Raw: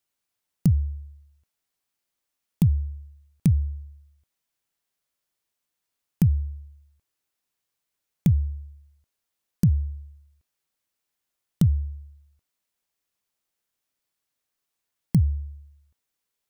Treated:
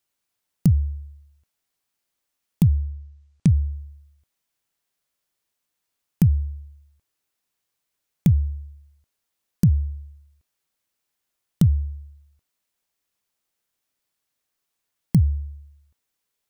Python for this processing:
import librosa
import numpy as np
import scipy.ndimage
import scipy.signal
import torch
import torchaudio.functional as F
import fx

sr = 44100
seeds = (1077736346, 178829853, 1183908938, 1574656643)

y = fx.lowpass(x, sr, hz=fx.line((2.64, 5000.0), (3.67, 9700.0)), slope=24, at=(2.64, 3.67), fade=0.02)
y = F.gain(torch.from_numpy(y), 2.5).numpy()